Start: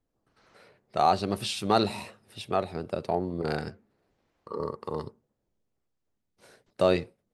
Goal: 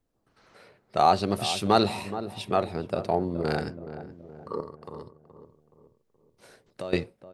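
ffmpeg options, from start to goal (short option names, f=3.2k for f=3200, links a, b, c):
-filter_complex "[0:a]asettb=1/sr,asplit=3[a][b][c];[a]atrim=end=4.604[d];[b]atrim=start=4.6:end=6.93,asetpts=PTS-STARTPTS,afade=t=in:d=0.004:c=qsin,afade=t=out:st=2.326:d=0.004:c=qsin,acompressor=threshold=-49dB:ratio=2[e];[c]atrim=start=6.926[f];[d][e]acrossfade=d=0.004:c1=hsin:c2=qsin[g];[g][f]acrossfade=d=0.004:c1=qsin:c2=hsin,asplit=2[h][i];[i]adelay=423,lowpass=f=960:p=1,volume=-11dB,asplit=2[j][k];[k]adelay=423,lowpass=f=960:p=1,volume=0.5,asplit=2[l][m];[m]adelay=423,lowpass=f=960:p=1,volume=0.5,asplit=2[n][o];[o]adelay=423,lowpass=f=960:p=1,volume=0.5,asplit=2[p][q];[q]adelay=423,lowpass=f=960:p=1,volume=0.5[r];[j][l][n][p][r]amix=inputs=5:normalize=0[s];[h][s]amix=inputs=2:normalize=0,volume=2.5dB"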